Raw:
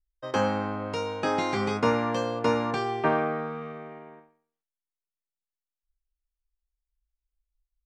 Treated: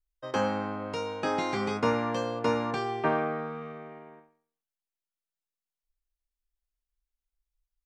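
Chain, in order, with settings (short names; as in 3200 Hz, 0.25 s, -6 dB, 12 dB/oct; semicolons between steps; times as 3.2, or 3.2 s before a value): notches 50/100 Hz; gain -2.5 dB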